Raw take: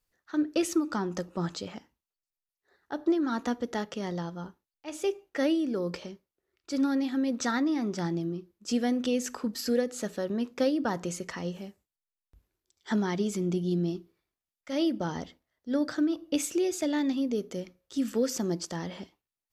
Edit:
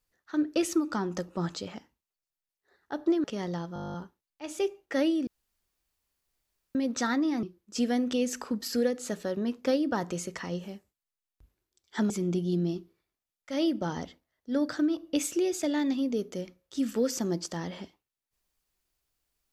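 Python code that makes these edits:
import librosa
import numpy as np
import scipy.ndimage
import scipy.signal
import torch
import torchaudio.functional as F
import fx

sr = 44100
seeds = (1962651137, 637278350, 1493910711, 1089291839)

y = fx.edit(x, sr, fx.cut(start_s=3.24, length_s=0.64),
    fx.stutter(start_s=4.38, slice_s=0.02, count=11),
    fx.room_tone_fill(start_s=5.71, length_s=1.48),
    fx.cut(start_s=7.87, length_s=0.49),
    fx.cut(start_s=13.03, length_s=0.26), tone=tone)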